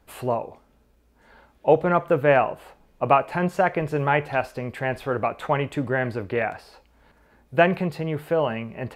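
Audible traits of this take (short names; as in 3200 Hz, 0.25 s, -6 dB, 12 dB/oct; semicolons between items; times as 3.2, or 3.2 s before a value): noise floor -60 dBFS; spectral tilt -2.5 dB/oct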